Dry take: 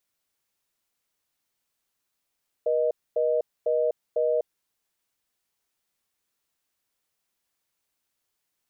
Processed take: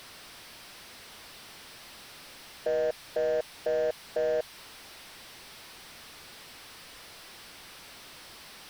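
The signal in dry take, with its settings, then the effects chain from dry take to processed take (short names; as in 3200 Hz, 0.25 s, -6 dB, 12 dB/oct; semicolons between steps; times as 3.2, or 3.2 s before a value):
call progress tone reorder tone, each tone -23.5 dBFS 1.79 s
delta modulation 32 kbps, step -40.5 dBFS; dynamic EQ 370 Hz, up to -4 dB, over -37 dBFS, Q 0.9; sample gate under -47 dBFS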